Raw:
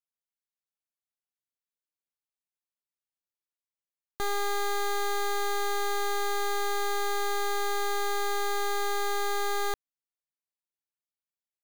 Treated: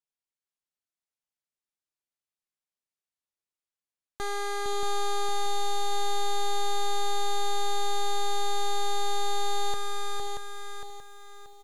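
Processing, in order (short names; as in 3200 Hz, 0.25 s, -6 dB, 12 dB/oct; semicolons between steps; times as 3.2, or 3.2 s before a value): LPF 11000 Hz 24 dB/oct; tapped delay 0.459/0.53 s -5/-17 dB; on a send at -18.5 dB: reverb RT60 5.4 s, pre-delay 0.163 s; on the sum: lo-fi delay 0.631 s, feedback 35%, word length 10-bit, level -4.5 dB; gain -2 dB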